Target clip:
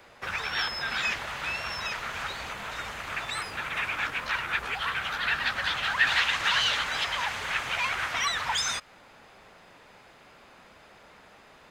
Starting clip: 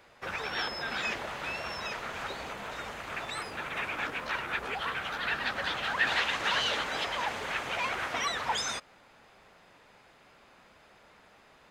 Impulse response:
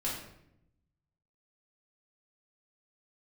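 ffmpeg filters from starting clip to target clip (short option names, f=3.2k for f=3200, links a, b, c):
-filter_complex "[0:a]acrossover=split=150|940|6700[a][b][c][d];[b]acompressor=threshold=-51dB:ratio=6[e];[d]acrusher=bits=4:mode=log:mix=0:aa=0.000001[f];[a][e][c][f]amix=inputs=4:normalize=0,volume=5dB"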